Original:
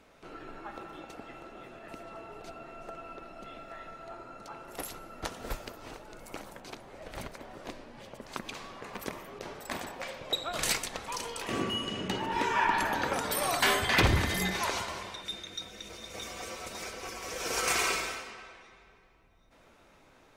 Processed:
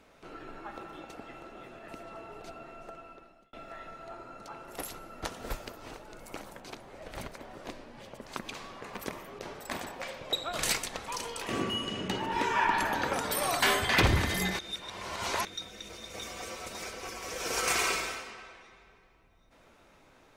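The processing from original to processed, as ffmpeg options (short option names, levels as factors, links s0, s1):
-filter_complex "[0:a]asplit=4[s0][s1][s2][s3];[s0]atrim=end=3.53,asetpts=PTS-STARTPTS,afade=t=out:st=2.36:d=1.17:c=qsin[s4];[s1]atrim=start=3.53:end=14.592,asetpts=PTS-STARTPTS,afade=t=in:d=0.004:c=hsin[s5];[s2]atrim=start=14.588:end=15.452,asetpts=PTS-STARTPTS,areverse[s6];[s3]atrim=start=15.448[s7];[s4][s5]concat=n=2:v=0:a=1[s8];[s8][s6]acrossfade=d=0.004:c1=hsin:c2=hsin[s9];[s9][s7]acrossfade=d=0.004:c1=hsin:c2=hsin"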